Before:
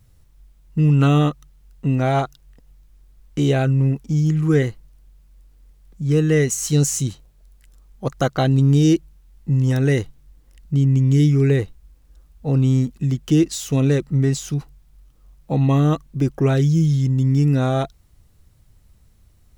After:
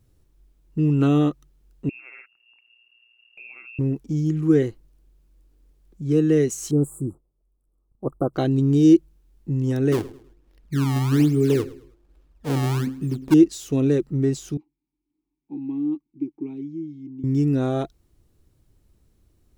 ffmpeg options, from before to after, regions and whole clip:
ffmpeg -i in.wav -filter_complex "[0:a]asettb=1/sr,asplit=3[link_01][link_02][link_03];[link_01]atrim=end=1.894[link_04];[link_02]atrim=start=1.89:end=3.79,asetpts=PTS-STARTPTS,afade=type=in:duration=0.004:curve=qsin,afade=type=out:start_time=1.896:duration=0.004:curve=qsin,lowpass=frequency=2400:width_type=q:width=0.5098,lowpass=frequency=2400:width_type=q:width=0.6013,lowpass=frequency=2400:width_type=q:width=0.9,lowpass=frequency=2400:width_type=q:width=2.563,afreqshift=-2800,acompressor=threshold=-37dB:ratio=2.5:attack=3.2:release=140:knee=1:detection=peak,aeval=exprs='val(0)*sin(2*PI*60*n/s)':channel_layout=same[link_05];[link_03]atrim=start=3.786[link_06];[link_04][link_05]acrossfade=duration=0.004:curve1=hsin:curve2=qsin[link_07];[link_07][link_06]acrossfade=duration=0.004:curve1=qsin:curve2=hsin,asettb=1/sr,asplit=3[link_08][link_09][link_10];[link_08]atrim=end=6.714[link_11];[link_09]atrim=start=6.71:end=8.34,asetpts=PTS-STARTPTS,afade=type=in:duration=0.004:curve=qsin,afade=type=out:start_time=1.626:duration=0.004:curve=qsin,agate=range=-12dB:threshold=-45dB:ratio=16:release=100:detection=peak,asuperstop=centerf=3400:order=20:qfactor=0.51,highshelf=frequency=6900:gain=-6[link_12];[link_10]atrim=start=8.336[link_13];[link_11][link_12]acrossfade=duration=0.004:curve1=hsin:curve2=qsin[link_14];[link_14][link_13]acrossfade=duration=0.004:curve1=qsin:curve2=hsin,asettb=1/sr,asplit=3[link_15][link_16][link_17];[link_15]atrim=end=9.924[link_18];[link_16]atrim=start=9.92:end=13.34,asetpts=PTS-STARTPTS,afade=type=in:duration=0.004:curve=qsin,afade=type=out:start_time=3.416:duration=0.004:curve=qsin,acrusher=samples=25:mix=1:aa=0.000001:lfo=1:lforange=40:lforate=1.2,bandreject=frequency=87.37:width_type=h:width=4,bandreject=frequency=174.74:width_type=h:width=4,bandreject=frequency=262.11:width_type=h:width=4,bandreject=frequency=349.48:width_type=h:width=4,bandreject=frequency=436.85:width_type=h:width=4,bandreject=frequency=524.22:width_type=h:width=4,aecho=1:1:106|212|318:0.119|0.0404|0.0137,atrim=end_sample=150822[link_19];[link_17]atrim=start=13.336[link_20];[link_18][link_19]acrossfade=duration=0.004:curve1=hsin:curve2=qsin[link_21];[link_21][link_20]acrossfade=duration=0.004:curve1=qsin:curve2=hsin,asettb=1/sr,asplit=3[link_22][link_23][link_24];[link_22]atrim=end=14.574[link_25];[link_23]atrim=start=14.57:end=17.24,asetpts=PTS-STARTPTS,afade=type=in:duration=0.004:curve=qsin,afade=type=out:start_time=2.666:duration=0.004:curve=qsin,asplit=3[link_26][link_27][link_28];[link_26]bandpass=frequency=300:width_type=q:width=8,volume=0dB[link_29];[link_27]bandpass=frequency=870:width_type=q:width=8,volume=-6dB[link_30];[link_28]bandpass=frequency=2240:width_type=q:width=8,volume=-9dB[link_31];[link_29][link_30][link_31]amix=inputs=3:normalize=0,equalizer=frequency=850:width_type=o:width=2.7:gain=-6[link_32];[link_24]atrim=start=17.236[link_33];[link_25][link_32]acrossfade=duration=0.004:curve1=hsin:curve2=qsin[link_34];[link_34][link_33]acrossfade=duration=0.004:curve1=qsin:curve2=hsin,equalizer=frequency=340:width_type=o:width=0.95:gain=12,bandreject=frequency=2000:width=23,volume=-8dB" out.wav

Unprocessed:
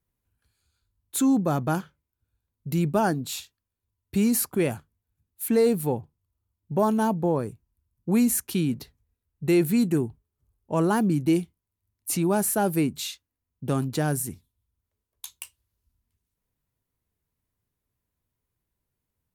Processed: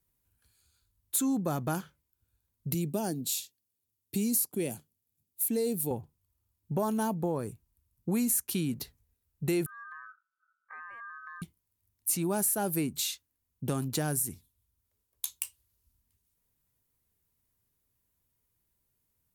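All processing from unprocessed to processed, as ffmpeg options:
ffmpeg -i in.wav -filter_complex "[0:a]asettb=1/sr,asplit=3[link_01][link_02][link_03];[link_01]atrim=end=2.744[link_04];[link_02]atrim=start=2.74:end=5.91,asetpts=PTS-STARTPTS,afade=type=in:duration=0.004:curve=qsin,afade=type=out:start_time=3.166:duration=0.004:curve=qsin,highpass=160,equalizer=frequency=1300:width_type=o:width=1.4:gain=-14.5[link_05];[link_03]atrim=start=5.906[link_06];[link_04][link_05]acrossfade=duration=0.004:curve1=hsin:curve2=qsin[link_07];[link_07][link_06]acrossfade=duration=0.004:curve1=qsin:curve2=hsin,asettb=1/sr,asplit=3[link_08][link_09][link_10];[link_08]atrim=end=9.664[link_11];[link_09]atrim=start=9.66:end=11.42,asetpts=PTS-STARTPTS,afade=type=in:duration=0.004:curve=qsin,afade=type=out:start_time=1.756:duration=0.004:curve=qsin,bandpass=frequency=110:width_type=q:width=0.96,acompressor=threshold=-40dB:ratio=12:attack=3.2:release=140:knee=1:detection=peak,aeval=exprs='val(0)*sin(2*PI*1400*n/s)':channel_layout=same[link_12];[link_10]atrim=start=11.416[link_13];[link_11][link_12]acrossfade=duration=0.004:curve1=hsin:curve2=qsin[link_14];[link_14][link_13]acrossfade=duration=0.004:curve1=qsin:curve2=hsin,aemphasis=mode=production:type=cd,acompressor=threshold=-30dB:ratio=2.5" out.wav

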